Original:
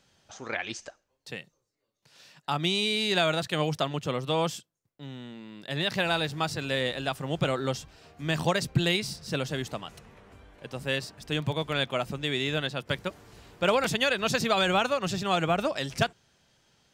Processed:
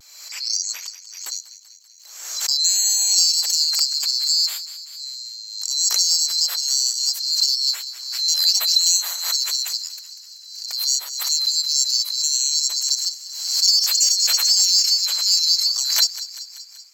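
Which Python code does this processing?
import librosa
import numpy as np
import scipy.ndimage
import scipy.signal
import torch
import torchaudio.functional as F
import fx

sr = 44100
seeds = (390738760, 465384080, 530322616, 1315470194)

p1 = fx.band_swap(x, sr, width_hz=4000)
p2 = scipy.signal.sosfilt(scipy.signal.butter(2, 500.0, 'highpass', fs=sr, output='sos'), p1)
p3 = 10.0 ** (-23.0 / 20.0) * np.tanh(p2 / 10.0 ** (-23.0 / 20.0))
p4 = p2 + (p3 * librosa.db_to_amplitude(-11.0))
p5 = fx.tilt_eq(p4, sr, slope=4.0)
p6 = p5 + fx.echo_thinned(p5, sr, ms=193, feedback_pct=64, hz=650.0, wet_db=-14.0, dry=0)
p7 = fx.vibrato(p6, sr, rate_hz=0.31, depth_cents=18.0)
p8 = fx.pre_swell(p7, sr, db_per_s=56.0)
y = p8 * librosa.db_to_amplitude(-3.5)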